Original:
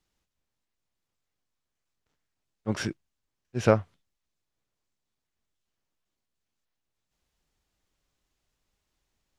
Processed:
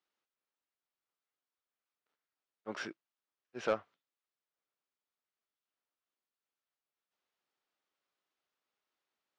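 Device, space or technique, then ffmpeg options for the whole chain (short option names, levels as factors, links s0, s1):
intercom: -af "highpass=380,lowpass=4400,equalizer=f=1300:t=o:w=0.35:g=4.5,asoftclip=type=tanh:threshold=0.158,volume=0.473"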